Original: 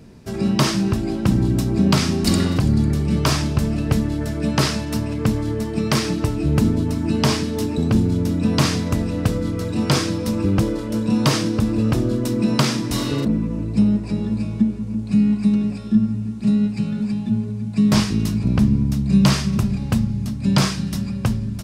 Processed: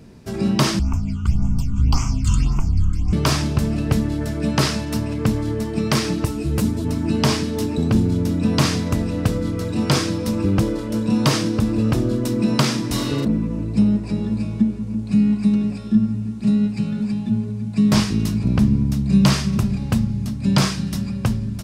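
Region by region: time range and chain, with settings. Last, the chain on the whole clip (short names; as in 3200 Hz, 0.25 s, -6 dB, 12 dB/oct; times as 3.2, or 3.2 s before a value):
0.79–3.13 frequency shift -130 Hz + fixed phaser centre 2600 Hz, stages 8 + phaser stages 8, 1.8 Hz, lowest notch 630–4100 Hz
6.25–6.85 high shelf 6100 Hz +11 dB + ensemble effect
whole clip: dry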